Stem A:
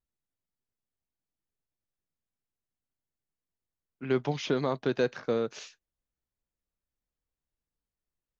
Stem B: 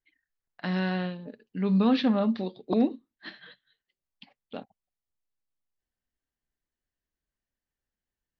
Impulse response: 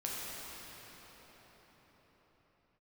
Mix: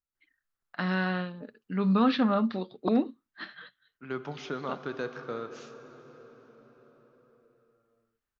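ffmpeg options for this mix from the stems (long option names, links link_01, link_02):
-filter_complex "[0:a]volume=-10.5dB,asplit=2[link_01][link_02];[link_02]volume=-10dB[link_03];[1:a]adelay=150,volume=-1.5dB[link_04];[2:a]atrim=start_sample=2205[link_05];[link_03][link_05]afir=irnorm=-1:irlink=0[link_06];[link_01][link_04][link_06]amix=inputs=3:normalize=0,equalizer=frequency=1300:width_type=o:width=0.61:gain=10.5"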